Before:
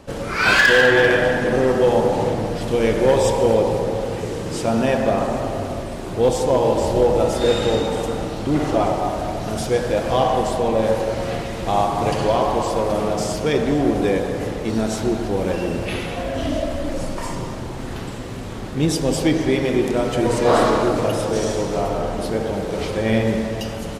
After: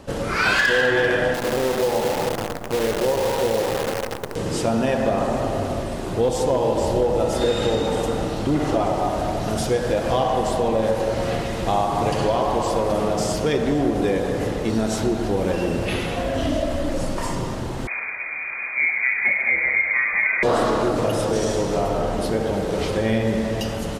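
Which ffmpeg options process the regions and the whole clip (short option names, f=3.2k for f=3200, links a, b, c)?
-filter_complex "[0:a]asettb=1/sr,asplit=3[a][b][c];[a]atrim=end=1.344[d];[b]atrim=start=1.34:end=4.36,asetpts=PTS-STARTPTS,afade=t=in:d=0.004:c=qsin,afade=t=out:st=3.016:d=0.004:c=qsin,lowpass=1.1k,lowshelf=f=420:g=-9,acrusher=bits=5:dc=4:mix=0:aa=0.000001[e];[c]atrim=start=4.356[f];[d][e]acrossfade=d=0.004:c1=hsin:c2=qsin[g];[g][f]acrossfade=d=0.004:c1=qsin:c2=hsin,asettb=1/sr,asplit=3[h][i][j];[h]atrim=end=17.874[k];[i]atrim=start=17.87:end=20.43,asetpts=PTS-STARTPTS,afade=t=in:d=0.004:c=qsin,afade=t=out:st=2.556:d=0.004:c=qsin,asplit=2[l][m];[m]adelay=30,volume=-11.5dB[n];[l][n]amix=inputs=2:normalize=0,atrim=end_sample=112896,lowpass=f=2.1k:t=q:w=0.5098,lowpass=f=2.1k:t=q:w=0.6013,lowpass=f=2.1k:t=q:w=0.9,lowpass=f=2.1k:t=q:w=2.563,afreqshift=-2500[o];[j]atrim=start=20.426[p];[k][o]acrossfade=d=0.004:c1=hsin:c2=qsin[q];[q][p]acrossfade=d=0.004:c1=qsin:c2=hsin,bandreject=f=2.3k:w=28,acompressor=threshold=-19dB:ratio=3,volume=1.5dB"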